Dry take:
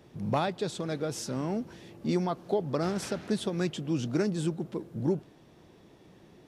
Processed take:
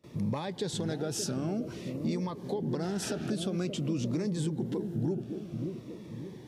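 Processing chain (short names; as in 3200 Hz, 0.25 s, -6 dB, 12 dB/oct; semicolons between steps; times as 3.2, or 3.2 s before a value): compressor, threshold -33 dBFS, peak gain reduction 10.5 dB; on a send: analogue delay 0.577 s, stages 2048, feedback 50%, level -6.5 dB; on the sum: gate with hold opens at -48 dBFS; HPF 59 Hz; in parallel at +1 dB: limiter -31.5 dBFS, peak gain reduction 10.5 dB; on the sum: cascading phaser falling 0.51 Hz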